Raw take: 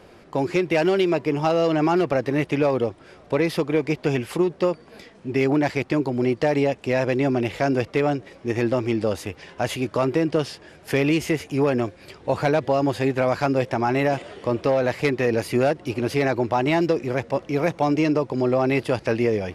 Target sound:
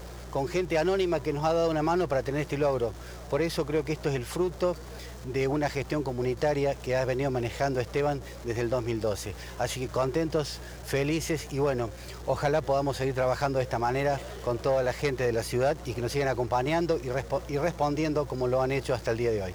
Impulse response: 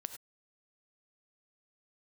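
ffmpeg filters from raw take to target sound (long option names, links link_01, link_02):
-af "aeval=exprs='val(0)+0.5*0.0141*sgn(val(0))':channel_layout=same,aeval=exprs='val(0)+0.0141*(sin(2*PI*60*n/s)+sin(2*PI*2*60*n/s)/2+sin(2*PI*3*60*n/s)/3+sin(2*PI*4*60*n/s)/4+sin(2*PI*5*60*n/s)/5)':channel_layout=same,equalizer=frequency=250:width_type=o:width=0.67:gain=-9,equalizer=frequency=2500:width_type=o:width=0.67:gain=-5,equalizer=frequency=6300:width_type=o:width=0.67:gain=4,volume=-4.5dB"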